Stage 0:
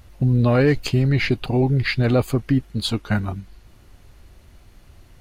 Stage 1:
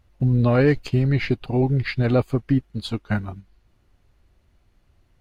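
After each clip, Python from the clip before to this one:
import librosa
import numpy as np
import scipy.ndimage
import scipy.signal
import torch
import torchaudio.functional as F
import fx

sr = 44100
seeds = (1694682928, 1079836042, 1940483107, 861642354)

y = fx.high_shelf(x, sr, hz=5600.0, db=-7.5)
y = fx.upward_expand(y, sr, threshold_db=-39.0, expansion=1.5)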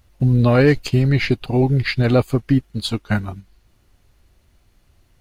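y = fx.high_shelf(x, sr, hz=4200.0, db=9.5)
y = y * 10.0 ** (3.5 / 20.0)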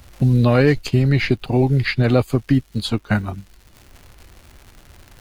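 y = fx.dmg_crackle(x, sr, seeds[0], per_s=190.0, level_db=-42.0)
y = fx.band_squash(y, sr, depth_pct=40)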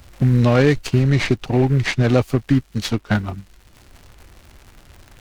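y = fx.noise_mod_delay(x, sr, seeds[1], noise_hz=1500.0, depth_ms=0.032)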